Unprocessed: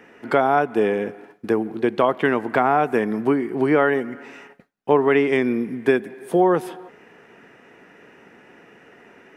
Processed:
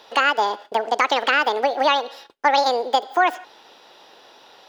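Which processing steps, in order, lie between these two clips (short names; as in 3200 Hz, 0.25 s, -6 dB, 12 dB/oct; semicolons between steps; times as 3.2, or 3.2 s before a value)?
speed mistake 7.5 ips tape played at 15 ips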